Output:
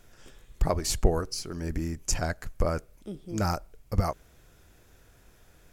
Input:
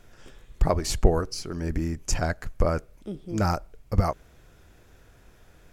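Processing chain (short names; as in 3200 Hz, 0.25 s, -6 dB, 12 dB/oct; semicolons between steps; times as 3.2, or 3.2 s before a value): high shelf 5400 Hz +7.5 dB; gain -3.5 dB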